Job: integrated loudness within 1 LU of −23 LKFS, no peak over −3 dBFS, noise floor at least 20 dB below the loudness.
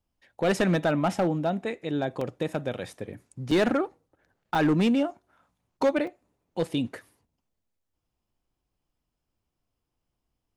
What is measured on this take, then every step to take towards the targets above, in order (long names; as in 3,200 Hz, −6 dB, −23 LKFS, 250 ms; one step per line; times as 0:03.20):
share of clipped samples 0.6%; peaks flattened at −17.0 dBFS; number of dropouts 4; longest dropout 3.9 ms; integrated loudness −27.0 LKFS; sample peak −17.0 dBFS; target loudness −23.0 LKFS
→ clipped peaks rebuilt −17 dBFS
repair the gap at 0:02.21/0:03.51/0:04.55/0:06.07, 3.9 ms
level +4 dB